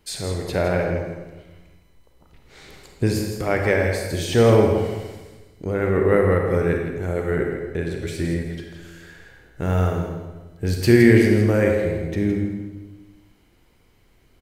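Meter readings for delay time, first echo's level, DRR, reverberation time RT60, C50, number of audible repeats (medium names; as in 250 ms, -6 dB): 164 ms, -8.5 dB, 1.0 dB, 1.2 s, 2.5 dB, 1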